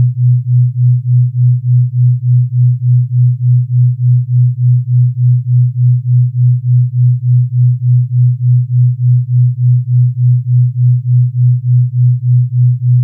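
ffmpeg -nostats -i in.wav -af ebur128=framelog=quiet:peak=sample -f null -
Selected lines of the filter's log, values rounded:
Integrated loudness:
  I:         -10.9 LUFS
  Threshold: -20.9 LUFS
Loudness range:
  LRA:         0.1 LU
  Threshold: -30.9 LUFS
  LRA low:   -11.0 LUFS
  LRA high:  -10.8 LUFS
Sample peak:
  Peak:       -3.5 dBFS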